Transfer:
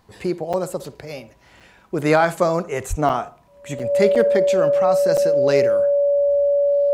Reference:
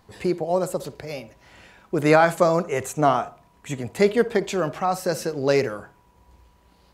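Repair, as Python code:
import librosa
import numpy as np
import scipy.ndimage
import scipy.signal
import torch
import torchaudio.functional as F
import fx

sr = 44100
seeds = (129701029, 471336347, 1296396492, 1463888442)

y = fx.fix_declip(x, sr, threshold_db=-5.0)
y = fx.notch(y, sr, hz=570.0, q=30.0)
y = fx.highpass(y, sr, hz=140.0, slope=24, at=(2.89, 3.01), fade=0.02)
y = fx.fix_interpolate(y, sr, at_s=(0.53, 1.6, 3.09, 3.79, 4.15, 5.17), length_ms=6.3)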